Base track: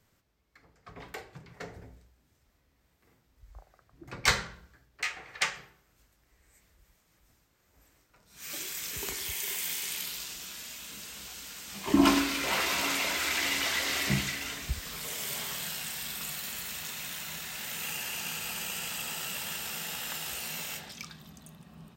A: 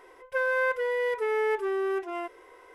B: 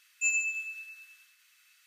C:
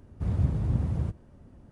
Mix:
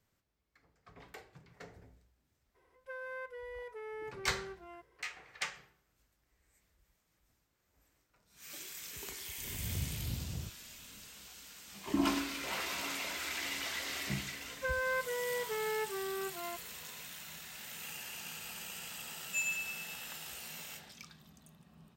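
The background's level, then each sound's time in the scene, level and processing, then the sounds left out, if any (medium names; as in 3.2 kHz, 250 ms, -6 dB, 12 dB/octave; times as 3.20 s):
base track -9 dB
2.54 s: add A -17.5 dB, fades 0.02 s
9.38 s: add C -13.5 dB + swell ahead of each attack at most 65 dB/s
14.29 s: add A -7.5 dB + high-pass 420 Hz
19.12 s: add B -7 dB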